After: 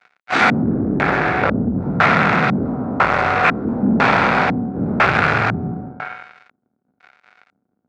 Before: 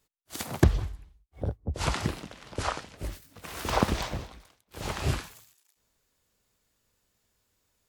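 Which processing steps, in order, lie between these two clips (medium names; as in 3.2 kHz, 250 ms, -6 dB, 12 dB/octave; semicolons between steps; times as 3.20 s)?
spectral sustain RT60 1.48 s; treble shelf 6.2 kHz -11 dB; whistle 740 Hz -50 dBFS; in parallel at +1 dB: compression, threshold -37 dBFS, peak gain reduction 23.5 dB; on the sum: fuzz box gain 41 dB, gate -43 dBFS; LFO low-pass square 1 Hz 260–2500 Hz; cabinet simulation 180–9300 Hz, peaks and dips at 320 Hz -7 dB, 760 Hz +4 dB, 1.4 kHz +10 dB, 3 kHz -10 dB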